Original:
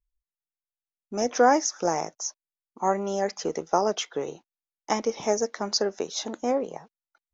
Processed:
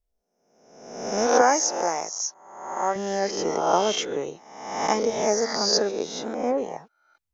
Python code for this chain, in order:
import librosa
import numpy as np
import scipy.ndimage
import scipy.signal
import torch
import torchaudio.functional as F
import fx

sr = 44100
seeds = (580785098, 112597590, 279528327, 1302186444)

y = fx.spec_swells(x, sr, rise_s=0.95)
y = fx.highpass(y, sr, hz=510.0, slope=6, at=(1.41, 2.96))
y = fx.high_shelf(y, sr, hz=2500.0, db=-9.0, at=(5.91, 6.58))